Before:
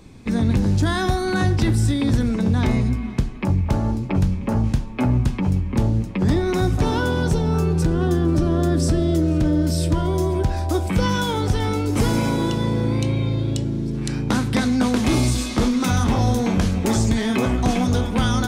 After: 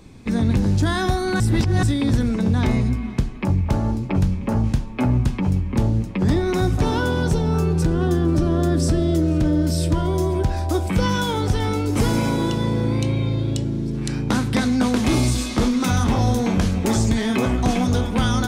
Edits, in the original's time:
1.40–1.83 s: reverse

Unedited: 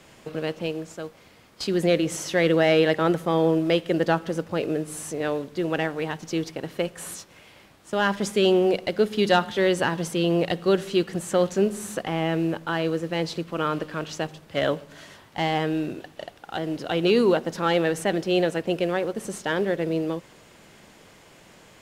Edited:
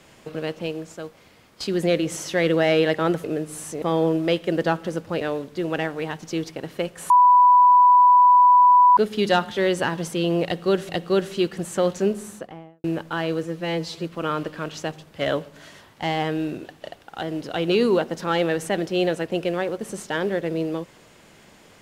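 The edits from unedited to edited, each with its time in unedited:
4.63–5.21 s: move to 3.24 s
7.10–8.97 s: bleep 989 Hz -10 dBFS
10.45–10.89 s: loop, 2 plays
11.59–12.40 s: studio fade out
12.99–13.40 s: stretch 1.5×

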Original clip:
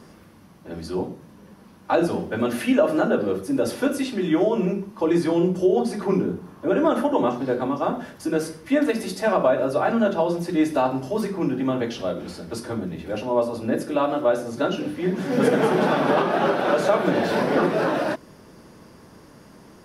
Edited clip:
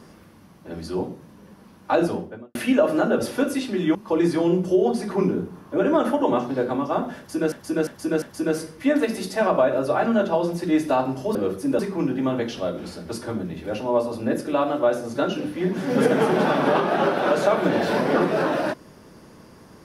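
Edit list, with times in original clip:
2.01–2.55 s: studio fade out
3.20–3.64 s: move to 11.21 s
4.39–4.86 s: delete
8.08–8.43 s: loop, 4 plays

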